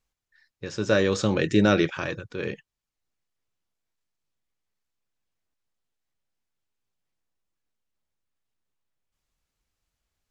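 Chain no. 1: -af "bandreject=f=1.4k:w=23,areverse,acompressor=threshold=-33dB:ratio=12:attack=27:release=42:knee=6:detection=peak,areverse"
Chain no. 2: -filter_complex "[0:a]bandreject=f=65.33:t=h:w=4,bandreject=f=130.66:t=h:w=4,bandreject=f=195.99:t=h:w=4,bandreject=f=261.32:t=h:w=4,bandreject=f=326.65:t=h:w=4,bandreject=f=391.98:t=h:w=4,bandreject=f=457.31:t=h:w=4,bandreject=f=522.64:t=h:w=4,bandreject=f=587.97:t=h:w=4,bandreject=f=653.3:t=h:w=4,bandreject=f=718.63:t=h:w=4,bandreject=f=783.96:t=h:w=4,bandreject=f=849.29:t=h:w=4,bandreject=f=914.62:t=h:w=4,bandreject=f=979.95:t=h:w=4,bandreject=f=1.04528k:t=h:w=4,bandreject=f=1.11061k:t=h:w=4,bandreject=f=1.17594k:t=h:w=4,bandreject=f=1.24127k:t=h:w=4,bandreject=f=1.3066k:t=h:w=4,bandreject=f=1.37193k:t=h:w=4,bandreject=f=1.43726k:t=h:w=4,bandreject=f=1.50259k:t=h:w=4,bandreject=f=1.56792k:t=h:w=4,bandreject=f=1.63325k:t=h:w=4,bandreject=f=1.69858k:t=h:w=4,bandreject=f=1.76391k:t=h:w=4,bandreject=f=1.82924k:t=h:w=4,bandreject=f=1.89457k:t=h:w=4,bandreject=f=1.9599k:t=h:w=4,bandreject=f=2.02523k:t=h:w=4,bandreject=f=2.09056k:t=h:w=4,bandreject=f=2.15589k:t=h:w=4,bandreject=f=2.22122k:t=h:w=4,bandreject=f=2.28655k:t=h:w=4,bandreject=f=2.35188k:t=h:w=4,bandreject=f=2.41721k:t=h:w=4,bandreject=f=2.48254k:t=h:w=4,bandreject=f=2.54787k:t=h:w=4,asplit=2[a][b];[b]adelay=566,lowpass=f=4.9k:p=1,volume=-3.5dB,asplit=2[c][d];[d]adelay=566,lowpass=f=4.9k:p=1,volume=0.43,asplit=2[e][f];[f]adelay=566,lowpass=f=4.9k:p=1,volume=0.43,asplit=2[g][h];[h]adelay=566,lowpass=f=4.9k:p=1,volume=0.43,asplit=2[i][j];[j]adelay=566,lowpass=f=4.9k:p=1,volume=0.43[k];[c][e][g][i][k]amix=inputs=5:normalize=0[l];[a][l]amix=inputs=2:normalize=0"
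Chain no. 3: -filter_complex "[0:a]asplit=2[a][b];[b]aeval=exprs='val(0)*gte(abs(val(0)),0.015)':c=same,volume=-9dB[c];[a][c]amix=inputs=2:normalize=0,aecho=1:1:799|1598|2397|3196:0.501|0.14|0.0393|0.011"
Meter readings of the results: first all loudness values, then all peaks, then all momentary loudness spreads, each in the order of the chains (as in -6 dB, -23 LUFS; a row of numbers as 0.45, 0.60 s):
-33.5, -24.0, -22.5 LUFS; -17.5, -5.5, -2.5 dBFS; 7, 18, 16 LU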